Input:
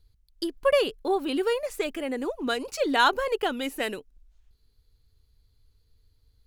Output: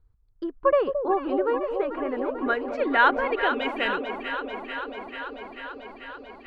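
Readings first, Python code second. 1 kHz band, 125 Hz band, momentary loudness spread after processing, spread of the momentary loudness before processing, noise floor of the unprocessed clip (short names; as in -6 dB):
+3.5 dB, n/a, 17 LU, 10 LU, -66 dBFS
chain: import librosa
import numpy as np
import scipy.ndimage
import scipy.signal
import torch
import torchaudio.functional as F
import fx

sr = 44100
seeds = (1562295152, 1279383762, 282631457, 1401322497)

y = fx.filter_sweep_lowpass(x, sr, from_hz=1200.0, to_hz=4700.0, start_s=1.78, end_s=5.23, q=2.1)
y = fx.echo_alternate(y, sr, ms=220, hz=840.0, feedback_pct=87, wet_db=-7)
y = F.gain(torch.from_numpy(y), -1.0).numpy()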